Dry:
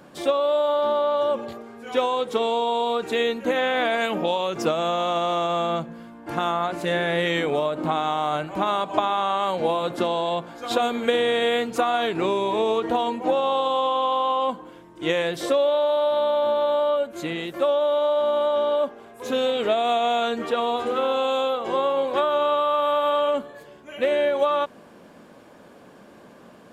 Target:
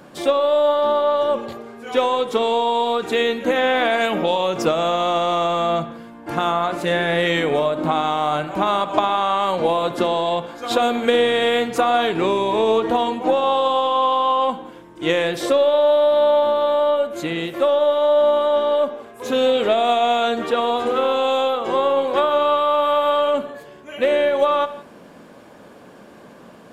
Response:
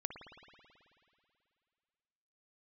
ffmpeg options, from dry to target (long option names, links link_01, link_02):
-filter_complex "[0:a]aeval=exprs='0.531*(cos(1*acos(clip(val(0)/0.531,-1,1)))-cos(1*PI/2))+0.0376*(cos(2*acos(clip(val(0)/0.531,-1,1)))-cos(2*PI/2))+0.0168*(cos(4*acos(clip(val(0)/0.531,-1,1)))-cos(4*PI/2))+0.00944*(cos(5*acos(clip(val(0)/0.531,-1,1)))-cos(5*PI/2))':channel_layout=same,asplit=2[link_01][link_02];[1:a]atrim=start_sample=2205,afade=type=out:start_time=0.24:duration=0.01,atrim=end_sample=11025[link_03];[link_02][link_03]afir=irnorm=-1:irlink=0,volume=0dB[link_04];[link_01][link_04]amix=inputs=2:normalize=0,volume=-1.5dB"